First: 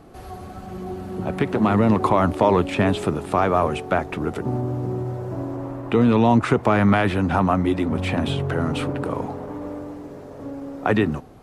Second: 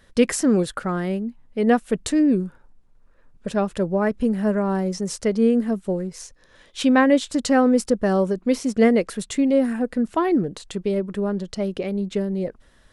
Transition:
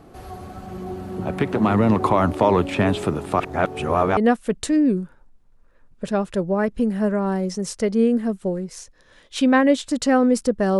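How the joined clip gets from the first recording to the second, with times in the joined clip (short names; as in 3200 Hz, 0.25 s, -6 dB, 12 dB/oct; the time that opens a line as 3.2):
first
3.4–4.17 reverse
4.17 switch to second from 1.6 s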